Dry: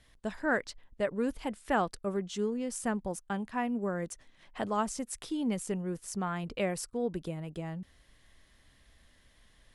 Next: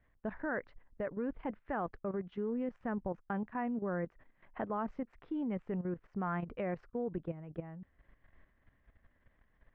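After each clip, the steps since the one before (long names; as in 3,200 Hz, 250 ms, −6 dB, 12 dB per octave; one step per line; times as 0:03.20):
low-pass filter 2,000 Hz 24 dB per octave
output level in coarse steps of 12 dB
level +1 dB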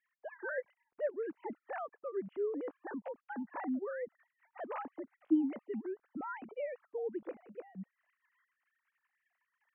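three sine waves on the formant tracks
level −1 dB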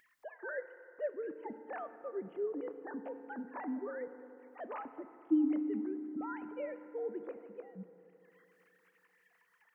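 upward compression, threshold −57 dBFS
feedback delay network reverb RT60 3.2 s, high-frequency decay 0.4×, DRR 10 dB
level −2 dB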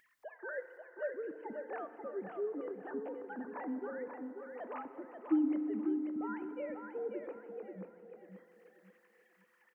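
repeating echo 537 ms, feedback 32%, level −6 dB
level −1 dB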